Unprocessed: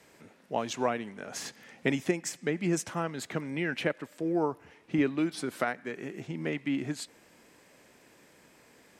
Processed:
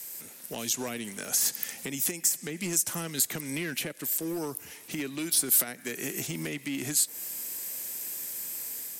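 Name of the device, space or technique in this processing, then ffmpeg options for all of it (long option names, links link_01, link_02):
FM broadcast chain: -filter_complex "[0:a]highpass=59,dynaudnorm=framelen=140:gausssize=5:maxgain=4.5dB,acrossover=split=450|1800[link_01][link_02][link_03];[link_01]acompressor=threshold=-27dB:ratio=4[link_04];[link_02]acompressor=threshold=-41dB:ratio=4[link_05];[link_03]acompressor=threshold=-40dB:ratio=4[link_06];[link_04][link_05][link_06]amix=inputs=3:normalize=0,aemphasis=mode=production:type=75fm,alimiter=limit=-24dB:level=0:latency=1:release=215,asoftclip=type=hard:threshold=-27.5dB,lowpass=frequency=15000:width=0.5412,lowpass=frequency=15000:width=1.3066,aemphasis=mode=production:type=75fm"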